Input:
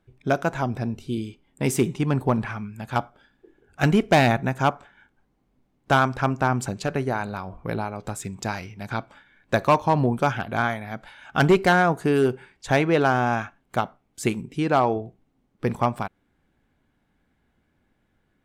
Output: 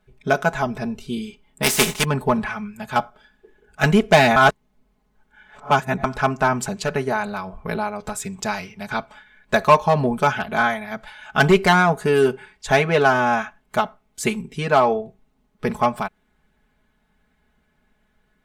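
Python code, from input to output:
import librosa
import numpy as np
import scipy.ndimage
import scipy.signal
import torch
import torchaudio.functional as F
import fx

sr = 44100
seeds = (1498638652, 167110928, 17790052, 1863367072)

y = fx.spec_flatten(x, sr, power=0.46, at=(1.62, 2.03), fade=0.02)
y = fx.edit(y, sr, fx.reverse_span(start_s=4.36, length_s=1.68), tone=tone)
y = fx.peak_eq(y, sr, hz=270.0, db=-6.0, octaves=1.4)
y = y + 0.85 * np.pad(y, (int(4.7 * sr / 1000.0), 0))[:len(y)]
y = F.gain(torch.from_numpy(y), 3.0).numpy()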